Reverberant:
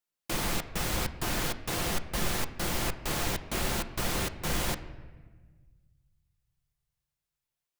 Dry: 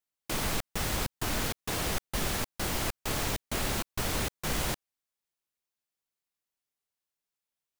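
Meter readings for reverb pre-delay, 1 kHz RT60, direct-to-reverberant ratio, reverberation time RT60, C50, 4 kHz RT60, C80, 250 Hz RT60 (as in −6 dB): 6 ms, 1.3 s, 7.5 dB, 1.4 s, 13.5 dB, 0.95 s, 15.0 dB, 2.0 s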